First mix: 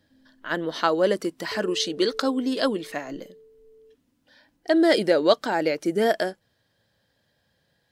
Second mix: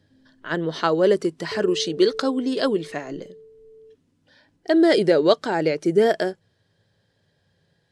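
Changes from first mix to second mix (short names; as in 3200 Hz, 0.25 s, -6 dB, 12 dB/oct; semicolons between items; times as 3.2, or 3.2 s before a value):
speech: add LPF 9900 Hz 24 dB/oct; master: add thirty-one-band EQ 100 Hz +11 dB, 160 Hz +9 dB, 400 Hz +9 dB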